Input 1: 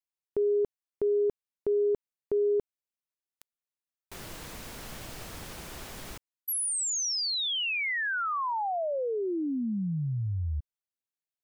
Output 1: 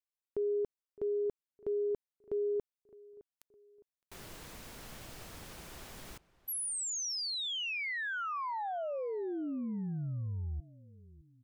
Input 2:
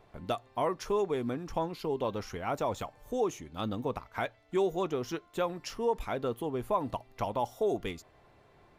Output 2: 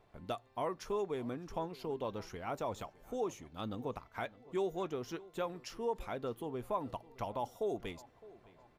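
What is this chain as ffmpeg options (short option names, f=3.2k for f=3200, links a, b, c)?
-filter_complex "[0:a]asplit=2[a][b];[b]adelay=612,lowpass=f=2.8k:p=1,volume=-20dB,asplit=2[c][d];[d]adelay=612,lowpass=f=2.8k:p=1,volume=0.43,asplit=2[e][f];[f]adelay=612,lowpass=f=2.8k:p=1,volume=0.43[g];[a][c][e][g]amix=inputs=4:normalize=0,volume=-6.5dB"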